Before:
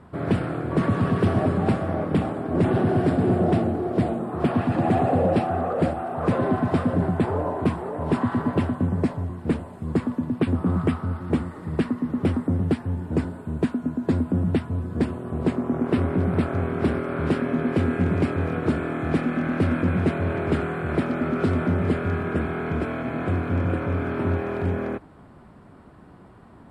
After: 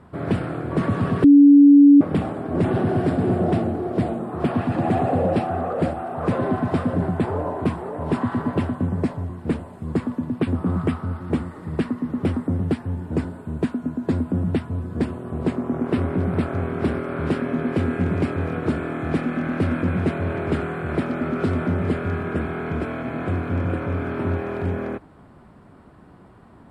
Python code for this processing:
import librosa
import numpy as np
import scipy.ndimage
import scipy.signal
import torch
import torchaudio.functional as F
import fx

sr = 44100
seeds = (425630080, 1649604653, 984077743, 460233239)

y = fx.edit(x, sr, fx.bleep(start_s=1.24, length_s=0.77, hz=285.0, db=-6.5), tone=tone)